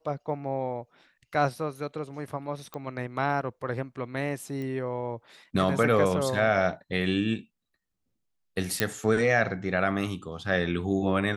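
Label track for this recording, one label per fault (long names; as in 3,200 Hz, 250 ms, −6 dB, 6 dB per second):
2.740000	2.740000	click −21 dBFS
4.620000	4.620000	click −26 dBFS
8.800000	8.800000	click −7 dBFS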